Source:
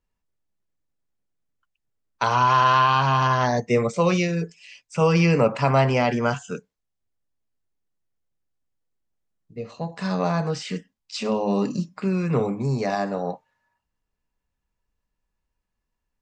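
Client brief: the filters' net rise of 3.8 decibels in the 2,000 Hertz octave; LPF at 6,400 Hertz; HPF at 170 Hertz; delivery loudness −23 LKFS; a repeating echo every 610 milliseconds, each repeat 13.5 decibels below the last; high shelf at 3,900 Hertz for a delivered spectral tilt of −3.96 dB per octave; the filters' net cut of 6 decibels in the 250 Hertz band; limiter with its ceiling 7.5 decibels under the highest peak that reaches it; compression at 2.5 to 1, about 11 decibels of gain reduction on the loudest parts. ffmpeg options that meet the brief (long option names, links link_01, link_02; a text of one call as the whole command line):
ffmpeg -i in.wav -af "highpass=170,lowpass=6400,equalizer=frequency=250:width_type=o:gain=-6.5,equalizer=frequency=2000:width_type=o:gain=6.5,highshelf=frequency=3900:gain=-4.5,acompressor=threshold=-30dB:ratio=2.5,alimiter=limit=-21.5dB:level=0:latency=1,aecho=1:1:610|1220:0.211|0.0444,volume=10dB" out.wav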